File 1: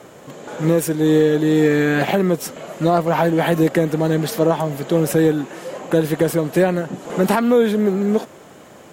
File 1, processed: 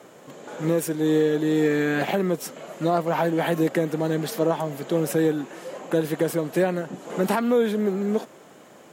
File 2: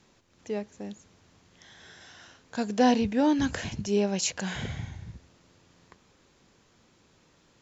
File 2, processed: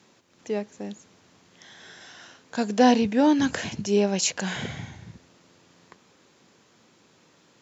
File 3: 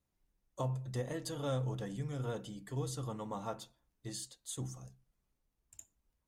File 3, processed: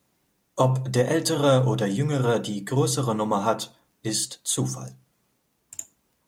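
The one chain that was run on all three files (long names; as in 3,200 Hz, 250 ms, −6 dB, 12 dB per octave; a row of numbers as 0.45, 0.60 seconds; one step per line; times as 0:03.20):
high-pass filter 150 Hz 12 dB per octave
loudness normalisation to −24 LKFS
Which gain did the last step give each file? −5.5, +4.0, +18.0 decibels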